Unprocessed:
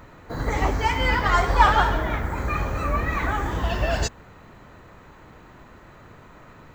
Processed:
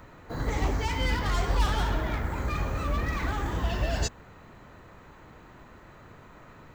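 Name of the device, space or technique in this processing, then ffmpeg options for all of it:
one-band saturation: -filter_complex "[0:a]acrossover=split=380|3400[link_01][link_02][link_03];[link_02]asoftclip=type=tanh:threshold=-29dB[link_04];[link_01][link_04][link_03]amix=inputs=3:normalize=0,volume=-3dB"

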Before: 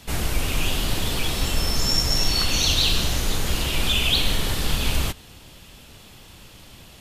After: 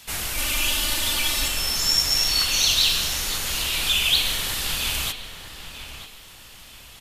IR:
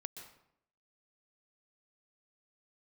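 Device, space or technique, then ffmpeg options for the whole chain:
filtered reverb send: -filter_complex "[0:a]tiltshelf=frequency=970:gain=-6.5,asettb=1/sr,asplit=3[link_01][link_02][link_03];[link_01]atrim=end=0.374[link_04];[link_02]atrim=start=0.37:end=1.48,asetpts=PTS-STARTPTS,afade=type=in:duration=0.004:curve=qsin,afade=type=out:start_time=1.106:duration=0.004:curve=qsin,aecho=1:1:3.4:0.95,atrim=end_sample=48951[link_05];[link_03]atrim=start=1.476[link_06];[link_04][link_05]acrossfade=duration=0.004:curve1=hsin:curve2=qsin[link_07];[link_07][link_06]acrossfade=duration=0.004:curve1=qsin:curve2=hsin,asplit=2[link_08][link_09];[link_09]highpass=460,lowpass=3100[link_10];[1:a]atrim=start_sample=2205[link_11];[link_10][link_11]afir=irnorm=-1:irlink=0,volume=-7.5dB[link_12];[link_08][link_12]amix=inputs=2:normalize=0,highshelf=frequency=5900:gain=4,asplit=2[link_13][link_14];[link_14]adelay=940,lowpass=frequency=3000:poles=1,volume=-10dB,asplit=2[link_15][link_16];[link_16]adelay=940,lowpass=frequency=3000:poles=1,volume=0.37,asplit=2[link_17][link_18];[link_18]adelay=940,lowpass=frequency=3000:poles=1,volume=0.37,asplit=2[link_19][link_20];[link_20]adelay=940,lowpass=frequency=3000:poles=1,volume=0.37[link_21];[link_13][link_15][link_17][link_19][link_21]amix=inputs=5:normalize=0,volume=-5dB"

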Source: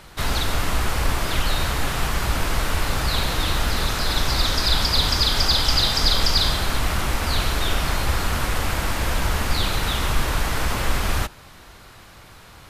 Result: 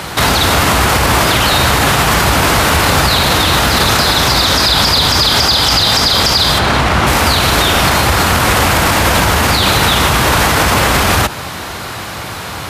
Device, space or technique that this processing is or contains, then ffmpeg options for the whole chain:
mastering chain: -filter_complex "[0:a]highpass=47,highpass=77,equalizer=frequency=810:width_type=o:width=0.77:gain=2,acompressor=threshold=-24dB:ratio=6,alimiter=level_in=23dB:limit=-1dB:release=50:level=0:latency=1,asplit=3[link_01][link_02][link_03];[link_01]afade=type=out:start_time=6.58:duration=0.02[link_04];[link_02]aemphasis=mode=reproduction:type=50fm,afade=type=in:start_time=6.58:duration=0.02,afade=type=out:start_time=7.06:duration=0.02[link_05];[link_03]afade=type=in:start_time=7.06:duration=0.02[link_06];[link_04][link_05][link_06]amix=inputs=3:normalize=0,volume=-1dB"

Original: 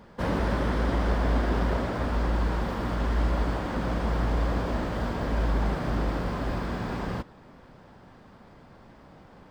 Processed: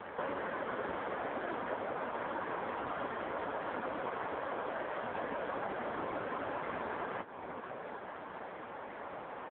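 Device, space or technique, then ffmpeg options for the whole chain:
voicemail: -filter_complex "[0:a]asettb=1/sr,asplit=3[link_01][link_02][link_03];[link_01]atrim=end=3.984[link_04];[link_02]atrim=start=3.98:end=5.23,asetpts=PTS-STARTPTS,afade=type=in:duration=0.004:curve=qsin,afade=type=out:start_time=1.246:duration=0.004:curve=qsin,highpass=frequency=180:poles=1[link_05];[link_03]atrim=start=5.226[link_06];[link_04][link_05]acrossfade=duration=0.004:curve1=hsin:curve2=qsin[link_07];[link_07][link_06]acrossfade=duration=0.004:curve1=qsin:curve2=hsin,highpass=430,lowpass=2700,asplit=2[link_08][link_09];[link_09]adelay=375,lowpass=frequency=1600:poles=1,volume=-20.5dB,asplit=2[link_10][link_11];[link_11]adelay=375,lowpass=frequency=1600:poles=1,volume=0.52,asplit=2[link_12][link_13];[link_13]adelay=375,lowpass=frequency=1600:poles=1,volume=0.52,asplit=2[link_14][link_15];[link_15]adelay=375,lowpass=frequency=1600:poles=1,volume=0.52[link_16];[link_08][link_10][link_12][link_14][link_16]amix=inputs=5:normalize=0,acompressor=threshold=-47dB:ratio=8,volume=14.5dB" -ar 8000 -c:a libopencore_amrnb -b:a 5150

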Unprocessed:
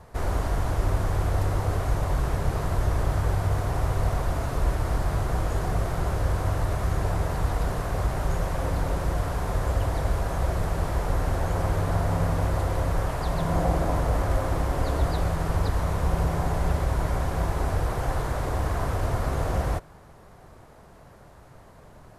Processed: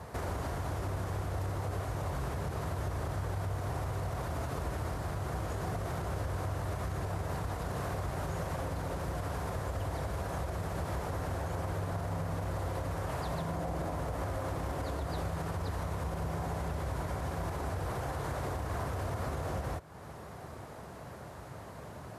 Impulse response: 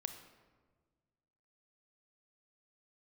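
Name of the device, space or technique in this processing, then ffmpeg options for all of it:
podcast mastering chain: -af "highpass=frequency=65:width=0.5412,highpass=frequency=65:width=1.3066,acompressor=threshold=-41dB:ratio=2.5,alimiter=level_in=7.5dB:limit=-24dB:level=0:latency=1:release=42,volume=-7.5dB,volume=5dB" -ar 48000 -c:a libmp3lame -b:a 96k

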